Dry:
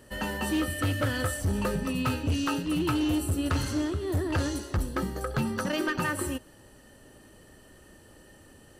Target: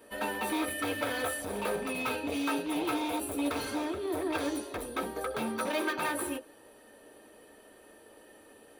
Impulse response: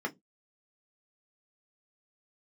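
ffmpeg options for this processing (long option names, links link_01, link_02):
-filter_complex "[0:a]aeval=exprs='0.0562*(abs(mod(val(0)/0.0562+3,4)-2)-1)':channel_layout=same,aexciter=amount=4.2:drive=5:freq=8900[link_01];[1:a]atrim=start_sample=2205,asetrate=83790,aresample=44100[link_02];[link_01][link_02]afir=irnorm=-1:irlink=0"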